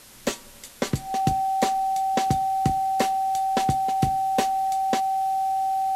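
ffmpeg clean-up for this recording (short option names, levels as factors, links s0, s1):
-af "bandreject=f=770:w=30,afwtdn=0.0045"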